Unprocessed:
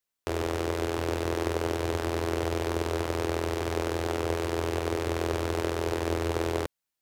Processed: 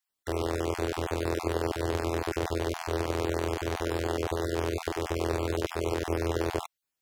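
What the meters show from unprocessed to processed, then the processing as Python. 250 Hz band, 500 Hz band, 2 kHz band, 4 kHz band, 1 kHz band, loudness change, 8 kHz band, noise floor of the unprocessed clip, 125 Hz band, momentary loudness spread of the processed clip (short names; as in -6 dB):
-1.0 dB, -1.0 dB, -1.5 dB, -1.5 dB, -1.0 dB, -1.0 dB, -1.0 dB, under -85 dBFS, -1.0 dB, 2 LU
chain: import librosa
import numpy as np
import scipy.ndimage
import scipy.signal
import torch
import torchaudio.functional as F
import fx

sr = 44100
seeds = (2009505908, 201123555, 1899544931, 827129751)

y = fx.spec_dropout(x, sr, seeds[0], share_pct=23)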